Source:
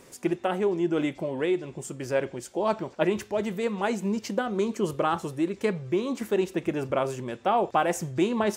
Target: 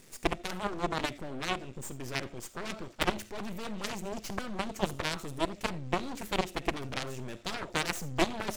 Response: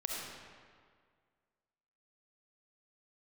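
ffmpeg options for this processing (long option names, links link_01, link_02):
-filter_complex "[0:a]equalizer=frequency=730:width=0.68:gain=-12,aeval=exprs='max(val(0),0)':channel_layout=same,asplit=2[link_01][link_02];[1:a]atrim=start_sample=2205,atrim=end_sample=3969[link_03];[link_02][link_03]afir=irnorm=-1:irlink=0,volume=-8.5dB[link_04];[link_01][link_04]amix=inputs=2:normalize=0,aeval=exprs='0.178*(cos(1*acos(clip(val(0)/0.178,-1,1)))-cos(1*PI/2))+0.0447*(cos(7*acos(clip(val(0)/0.178,-1,1)))-cos(7*PI/2))+0.01*(cos(8*acos(clip(val(0)/0.178,-1,1)))-cos(8*PI/2))':channel_layout=same,volume=3dB"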